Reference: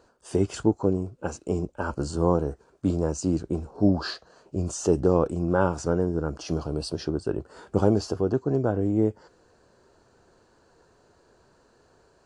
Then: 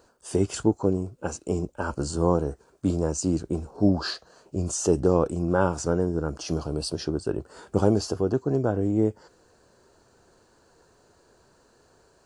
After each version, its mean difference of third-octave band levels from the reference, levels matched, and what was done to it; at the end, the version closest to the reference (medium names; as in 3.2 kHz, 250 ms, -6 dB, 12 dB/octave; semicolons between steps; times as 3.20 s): 1.0 dB: treble shelf 7.2 kHz +10.5 dB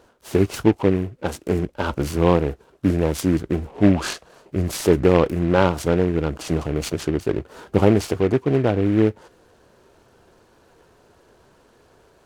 4.5 dB: delay time shaken by noise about 1.6 kHz, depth 0.043 ms; trim +5.5 dB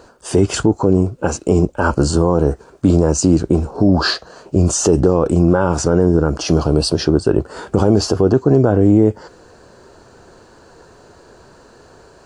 2.5 dB: loudness maximiser +16.5 dB; trim -1 dB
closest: first